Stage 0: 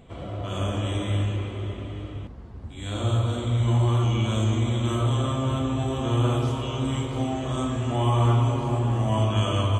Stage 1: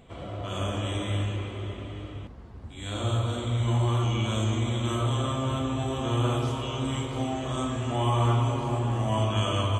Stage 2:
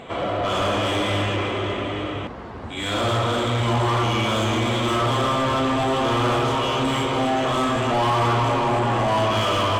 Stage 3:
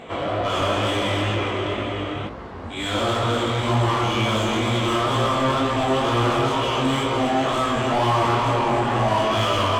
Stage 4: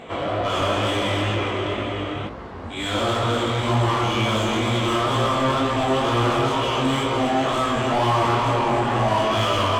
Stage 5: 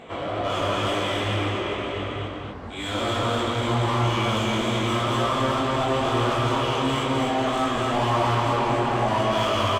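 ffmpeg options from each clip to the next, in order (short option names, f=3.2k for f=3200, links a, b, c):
-af "lowshelf=f=490:g=-4"
-filter_complex "[0:a]asplit=2[a][b];[b]highpass=f=720:p=1,volume=27dB,asoftclip=type=tanh:threshold=-13.5dB[c];[a][c]amix=inputs=2:normalize=0,lowpass=f=1.9k:p=1,volume=-6dB,volume=1dB"
-af "flanger=delay=17:depth=5.9:speed=2.1,volume=3dB"
-af anull
-af "aecho=1:1:244:0.708,volume=-4dB"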